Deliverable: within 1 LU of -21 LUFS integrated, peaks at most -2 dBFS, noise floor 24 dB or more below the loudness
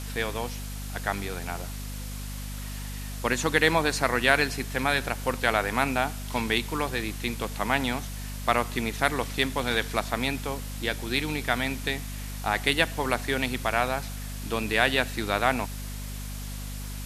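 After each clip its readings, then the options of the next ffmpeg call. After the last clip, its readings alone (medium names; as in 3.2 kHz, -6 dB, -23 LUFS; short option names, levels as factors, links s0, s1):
hum 50 Hz; highest harmonic 250 Hz; hum level -33 dBFS; noise floor -36 dBFS; noise floor target -52 dBFS; loudness -27.5 LUFS; peak level -4.0 dBFS; loudness target -21.0 LUFS
-> -af "bandreject=f=50:t=h:w=4,bandreject=f=100:t=h:w=4,bandreject=f=150:t=h:w=4,bandreject=f=200:t=h:w=4,bandreject=f=250:t=h:w=4"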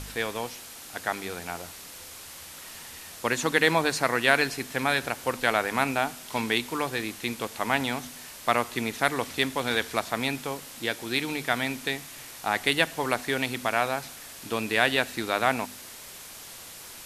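hum not found; noise floor -44 dBFS; noise floor target -51 dBFS
-> -af "afftdn=nr=7:nf=-44"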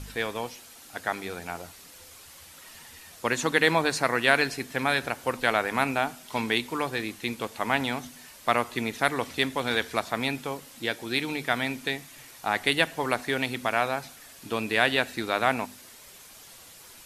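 noise floor -49 dBFS; noise floor target -51 dBFS
-> -af "afftdn=nr=6:nf=-49"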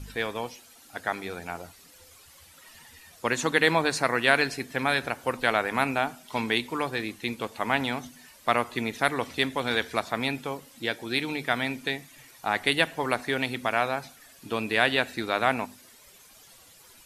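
noise floor -54 dBFS; loudness -27.5 LUFS; peak level -4.5 dBFS; loudness target -21.0 LUFS
-> -af "volume=2.11,alimiter=limit=0.794:level=0:latency=1"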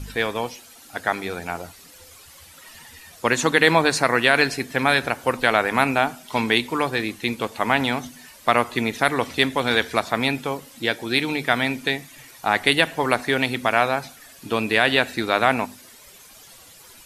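loudness -21.5 LUFS; peak level -2.0 dBFS; noise floor -47 dBFS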